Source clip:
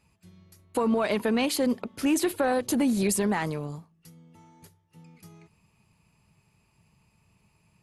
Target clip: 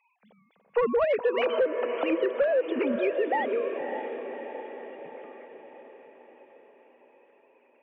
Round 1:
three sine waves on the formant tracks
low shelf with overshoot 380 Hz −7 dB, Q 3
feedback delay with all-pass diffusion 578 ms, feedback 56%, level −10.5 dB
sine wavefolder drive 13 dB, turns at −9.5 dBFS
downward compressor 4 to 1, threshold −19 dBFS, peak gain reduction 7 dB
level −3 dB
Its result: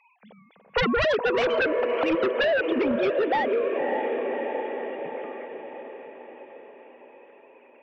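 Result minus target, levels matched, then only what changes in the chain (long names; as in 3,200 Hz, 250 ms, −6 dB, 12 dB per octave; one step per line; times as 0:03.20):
sine wavefolder: distortion +17 dB
change: sine wavefolder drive 4 dB, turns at −9.5 dBFS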